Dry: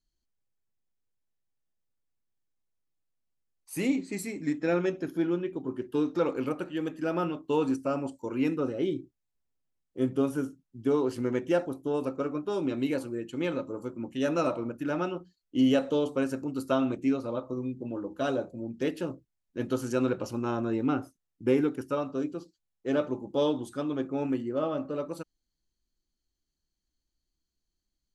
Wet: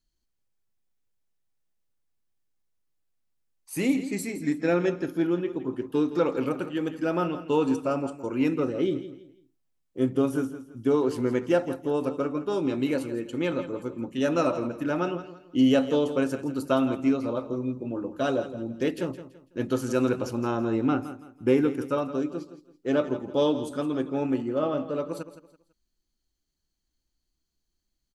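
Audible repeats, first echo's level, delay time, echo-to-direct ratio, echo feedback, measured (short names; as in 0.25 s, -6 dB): 3, -13.0 dB, 0.166 s, -12.5 dB, 31%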